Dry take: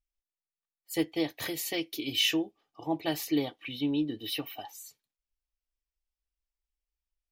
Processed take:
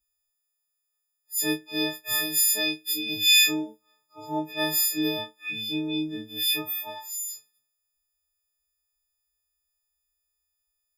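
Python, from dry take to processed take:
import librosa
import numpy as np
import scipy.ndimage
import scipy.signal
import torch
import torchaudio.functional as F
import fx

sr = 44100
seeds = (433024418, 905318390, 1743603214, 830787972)

y = fx.freq_snap(x, sr, grid_st=6)
y = fx.stretch_vocoder(y, sr, factor=1.5)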